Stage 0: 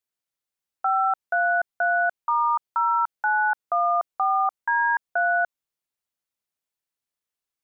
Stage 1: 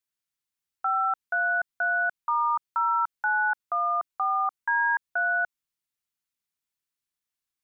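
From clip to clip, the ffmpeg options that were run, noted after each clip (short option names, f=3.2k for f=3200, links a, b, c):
-af "equalizer=f=580:w=1.3:g=-10"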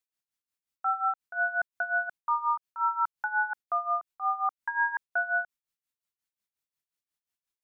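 -af "tremolo=f=5.6:d=0.81"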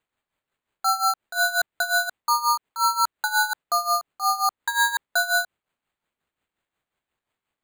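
-af "acrusher=samples=8:mix=1:aa=0.000001,volume=6dB"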